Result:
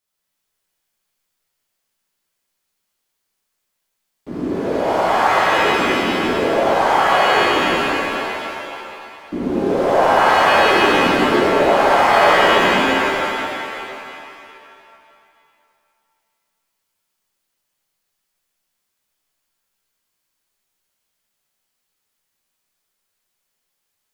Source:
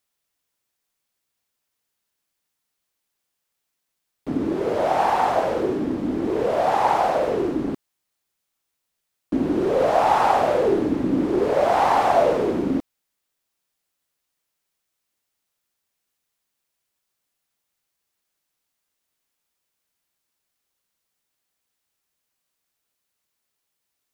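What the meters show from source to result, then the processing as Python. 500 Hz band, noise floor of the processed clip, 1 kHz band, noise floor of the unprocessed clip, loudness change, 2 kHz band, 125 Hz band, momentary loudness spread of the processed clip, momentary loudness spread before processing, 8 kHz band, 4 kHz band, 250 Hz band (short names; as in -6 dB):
+4.5 dB, -75 dBFS, +6.0 dB, -79 dBFS, +5.5 dB, +16.0 dB, +3.0 dB, 16 LU, 8 LU, +10.5 dB, +17.0 dB, +2.5 dB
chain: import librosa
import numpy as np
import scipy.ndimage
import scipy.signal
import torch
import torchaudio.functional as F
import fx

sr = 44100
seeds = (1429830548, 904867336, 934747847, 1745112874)

y = fx.rev_shimmer(x, sr, seeds[0], rt60_s=2.5, semitones=7, shimmer_db=-2, drr_db=-6.5)
y = y * librosa.db_to_amplitude(-4.5)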